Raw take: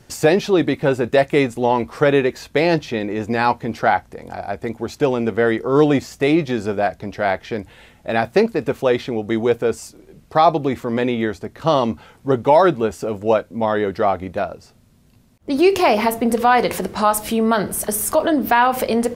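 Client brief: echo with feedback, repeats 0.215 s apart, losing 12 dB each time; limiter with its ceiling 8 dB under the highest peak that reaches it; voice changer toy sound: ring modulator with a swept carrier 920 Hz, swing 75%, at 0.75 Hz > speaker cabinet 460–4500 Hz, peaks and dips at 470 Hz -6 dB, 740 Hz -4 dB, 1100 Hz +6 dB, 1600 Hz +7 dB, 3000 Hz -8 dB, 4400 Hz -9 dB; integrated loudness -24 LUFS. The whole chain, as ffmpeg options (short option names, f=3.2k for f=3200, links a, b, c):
-af "alimiter=limit=-11.5dB:level=0:latency=1,aecho=1:1:215|430|645:0.251|0.0628|0.0157,aeval=exprs='val(0)*sin(2*PI*920*n/s+920*0.75/0.75*sin(2*PI*0.75*n/s))':c=same,highpass=460,equalizer=f=470:t=q:w=4:g=-6,equalizer=f=740:t=q:w=4:g=-4,equalizer=f=1.1k:t=q:w=4:g=6,equalizer=f=1.6k:t=q:w=4:g=7,equalizer=f=3k:t=q:w=4:g=-8,equalizer=f=4.4k:t=q:w=4:g=-9,lowpass=f=4.5k:w=0.5412,lowpass=f=4.5k:w=1.3066,volume=-1.5dB"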